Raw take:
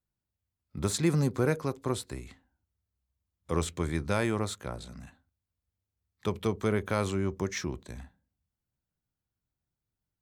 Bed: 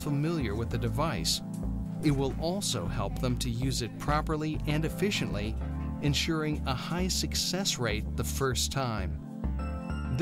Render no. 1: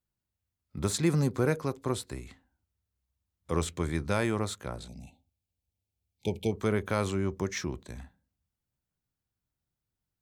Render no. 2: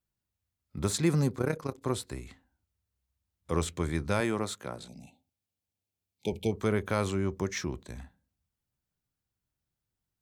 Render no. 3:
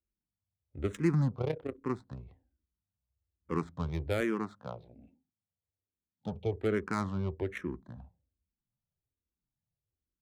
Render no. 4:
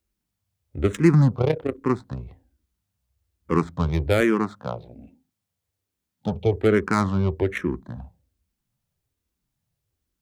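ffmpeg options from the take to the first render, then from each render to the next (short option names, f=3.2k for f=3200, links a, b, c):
-filter_complex "[0:a]asplit=3[a][b][c];[a]afade=t=out:st=4.87:d=0.02[d];[b]asuperstop=centerf=1400:order=20:qfactor=1.1,afade=t=in:st=4.87:d=0.02,afade=t=out:st=6.51:d=0.02[e];[c]afade=t=in:st=6.51:d=0.02[f];[d][e][f]amix=inputs=3:normalize=0"
-filter_complex "[0:a]asettb=1/sr,asplit=3[a][b][c];[a]atrim=end=1.354[d];[b]atrim=start=1.35:end=1.82,asetpts=PTS-STARTPTS,afade=t=in:d=0.004:c=qsin,afade=t=out:st=0.466:d=0.004:c=qsin,tremolo=f=32:d=0.788[e];[c]atrim=start=1.816[f];[d][e]acrossfade=d=0.004:c1=hsin:c2=qsin[g];[g][f]acrossfade=d=0.004:c1=qsin:c2=hsin,asettb=1/sr,asplit=3[h][i][j];[h]atrim=end=4.204[k];[i]atrim=start=4.2:end=6.33,asetpts=PTS-STARTPTS,afade=t=in:d=0.004:c=qsin,afade=t=out:st=2.126:d=0.004:c=qsin,highpass=140[l];[j]atrim=start=6.326[m];[k][l]acrossfade=d=0.004:c1=hsin:c2=qsin[n];[n][m]acrossfade=d=0.004:c1=qsin:c2=hsin"
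-filter_complex "[0:a]adynamicsmooth=sensitivity=4:basefreq=780,asplit=2[a][b];[b]afreqshift=-1.2[c];[a][c]amix=inputs=2:normalize=1"
-af "volume=11.5dB"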